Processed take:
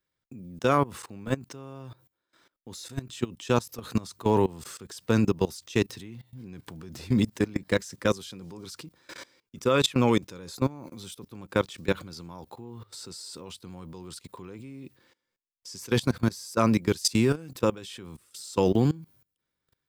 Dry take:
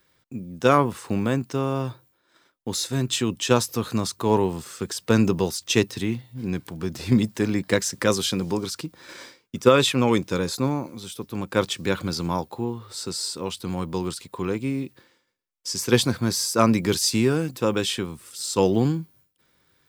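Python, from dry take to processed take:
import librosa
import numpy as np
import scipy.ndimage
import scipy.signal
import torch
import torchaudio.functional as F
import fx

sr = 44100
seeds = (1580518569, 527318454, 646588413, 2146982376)

y = fx.low_shelf(x, sr, hz=83.0, db=5.0)
y = fx.level_steps(y, sr, step_db=21)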